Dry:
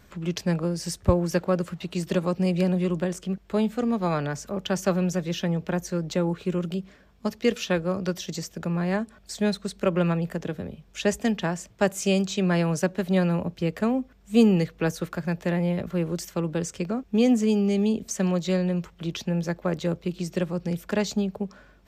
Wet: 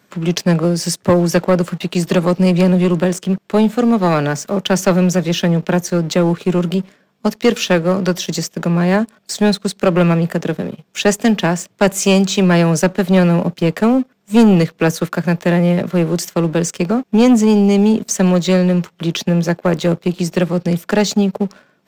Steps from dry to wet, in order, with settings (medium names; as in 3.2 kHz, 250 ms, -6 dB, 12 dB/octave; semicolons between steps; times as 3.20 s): high-pass 140 Hz 24 dB/octave; waveshaping leveller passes 2; trim +5 dB